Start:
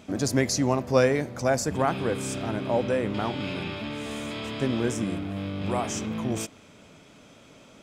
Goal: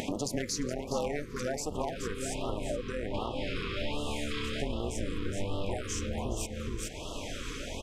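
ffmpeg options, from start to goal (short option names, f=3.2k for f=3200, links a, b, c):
-af "aeval=exprs='0.224*(abs(mod(val(0)/0.224+3,4)-2)-1)':c=same,tremolo=f=300:d=0.889,lowshelf=f=110:g=-5,bandreject=f=50:t=h:w=6,bandreject=f=100:t=h:w=6,bandreject=f=150:t=h:w=6,bandreject=f=200:t=h:w=6,aecho=1:1:421:0.316,acompressor=mode=upward:threshold=-28dB:ratio=2.5,aresample=32000,aresample=44100,acompressor=threshold=-35dB:ratio=3,asubboost=boost=9:cutoff=56,afftfilt=real='re*(1-between(b*sr/1024,680*pow(1900/680,0.5+0.5*sin(2*PI*1.3*pts/sr))/1.41,680*pow(1900/680,0.5+0.5*sin(2*PI*1.3*pts/sr))*1.41))':imag='im*(1-between(b*sr/1024,680*pow(1900/680,0.5+0.5*sin(2*PI*1.3*pts/sr))/1.41,680*pow(1900/680,0.5+0.5*sin(2*PI*1.3*pts/sr))*1.41))':win_size=1024:overlap=0.75,volume=4dB"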